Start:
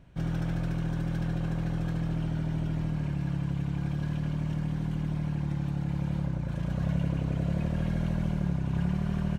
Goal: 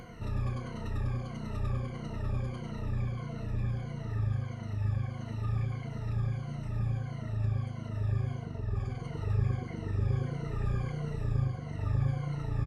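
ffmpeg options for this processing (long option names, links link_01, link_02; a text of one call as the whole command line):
ffmpeg -i in.wav -filter_complex "[0:a]afftfilt=real='re*pow(10,19/40*sin(2*PI*(1.9*log(max(b,1)*sr/1024/100)/log(2)-(-2.1)*(pts-256)/sr)))':imag='im*pow(10,19/40*sin(2*PI*(1.9*log(max(b,1)*sr/1024/100)/log(2)-(-2.1)*(pts-256)/sr)))':win_size=1024:overlap=0.75,lowshelf=frequency=310:gain=-2.5,acompressor=mode=upward:threshold=-28dB:ratio=2.5,asplit=2[link_01][link_02];[link_02]adelay=21,volume=-12.5dB[link_03];[link_01][link_03]amix=inputs=2:normalize=0,asetrate=32667,aresample=44100,volume=-5dB" out.wav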